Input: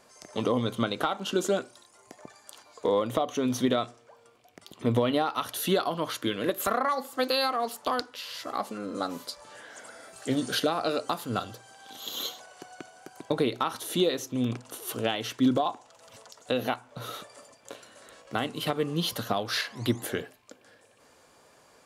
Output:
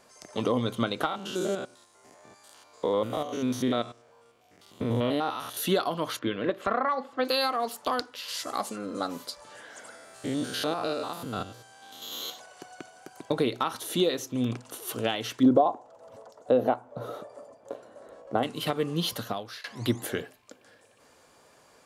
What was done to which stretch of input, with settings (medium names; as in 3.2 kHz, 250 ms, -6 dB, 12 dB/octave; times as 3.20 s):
1.06–5.57 s: spectrogram pixelated in time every 100 ms
6.19–7.25 s: low-pass 2.7 kHz
8.28–8.76 s: peaking EQ 8.3 kHz +11.5 dB 1.4 oct
9.95–12.30 s: spectrogram pixelated in time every 100 ms
15.43–18.43 s: FFT filter 140 Hz 0 dB, 600 Hz +8 dB, 2.6 kHz -13 dB
19.10–19.64 s: fade out, to -23 dB